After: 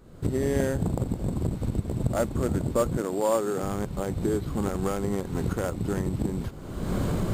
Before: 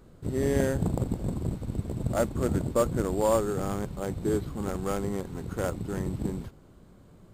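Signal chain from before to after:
camcorder AGC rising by 40 dB per second
0:02.97–0:03.63: high-pass filter 210 Hz 12 dB per octave

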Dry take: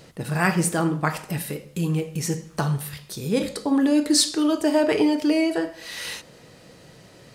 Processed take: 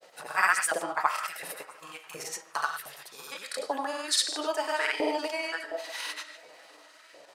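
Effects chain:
convolution reverb RT60 0.30 s, pre-delay 75 ms, DRR 12 dB
granular cloud, pitch spread up and down by 0 semitones
auto-filter high-pass saw up 1.4 Hz 570–1,700 Hz
feedback echo with a long and a short gap by turns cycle 1,066 ms, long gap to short 1.5 to 1, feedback 31%, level −23.5 dB
level −3.5 dB

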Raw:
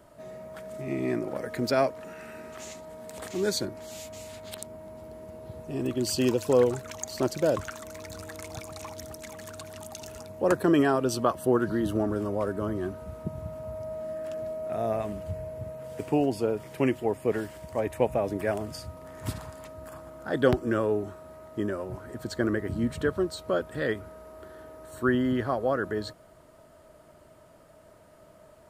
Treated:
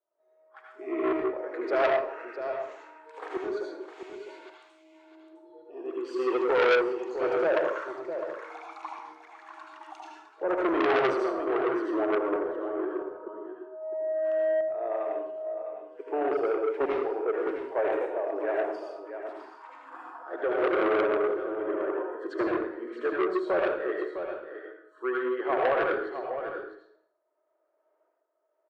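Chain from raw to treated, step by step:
0:19.45–0:22.05: delay that plays each chunk backwards 123 ms, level −0.5 dB
low-pass filter 1,500 Hz 12 dB per octave
noise reduction from a noise print of the clip's start 23 dB
elliptic high-pass filter 350 Hz, stop band 50 dB
shaped tremolo saw up 0.89 Hz, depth 85%
harmonic generator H 5 −17 dB, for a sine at −14.5 dBFS
single-tap delay 657 ms −10.5 dB
convolution reverb RT60 0.60 s, pre-delay 67 ms, DRR −1.5 dB
saturating transformer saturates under 1,600 Hz
level +1.5 dB

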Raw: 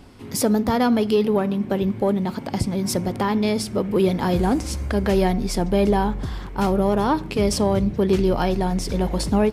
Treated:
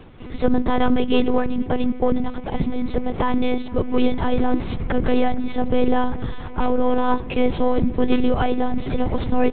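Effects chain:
one-pitch LPC vocoder at 8 kHz 250 Hz
tape delay 461 ms, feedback 82%, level −19 dB, low-pass 1,200 Hz
level +2.5 dB

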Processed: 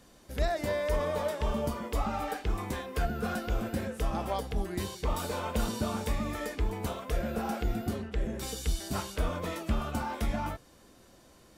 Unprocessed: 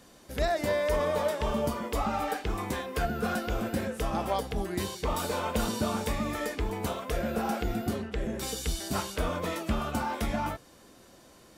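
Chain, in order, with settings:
low-shelf EQ 88 Hz +8 dB
level −3.5 dB

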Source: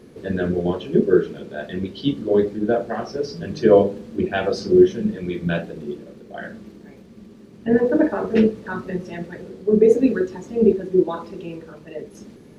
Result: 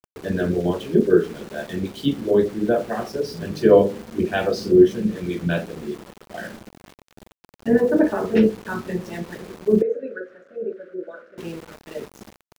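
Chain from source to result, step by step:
centre clipping without the shift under −37 dBFS
0:09.82–0:11.38: pair of resonant band-passes 910 Hz, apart 1.4 octaves

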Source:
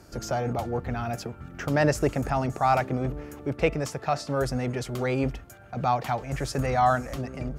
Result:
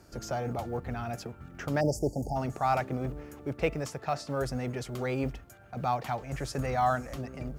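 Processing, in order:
log-companded quantiser 8 bits
time-frequency box erased 0:01.81–0:02.36, 900–4,500 Hz
level −5 dB

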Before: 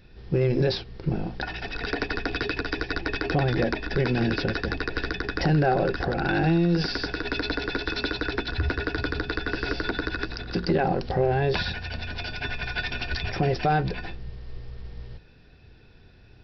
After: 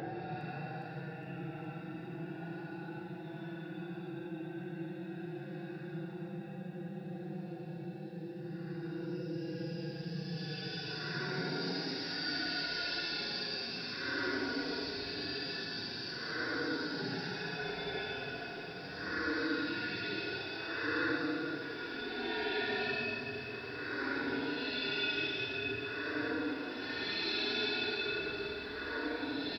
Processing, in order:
compressor whose output falls as the input rises −29 dBFS, ratio −1
band-pass filter 150–4,500 Hz
phase-vocoder stretch with locked phases 1.8×
single-tap delay 478 ms −12.5 dB
extreme stretch with random phases 15×, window 0.05 s, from 0:11.57
feedback echo at a low word length 411 ms, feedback 80%, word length 10 bits, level −14 dB
level −7.5 dB

